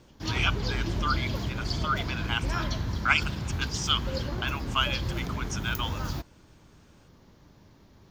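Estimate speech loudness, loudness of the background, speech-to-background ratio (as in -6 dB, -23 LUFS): -31.0 LUFS, -32.5 LUFS, 1.5 dB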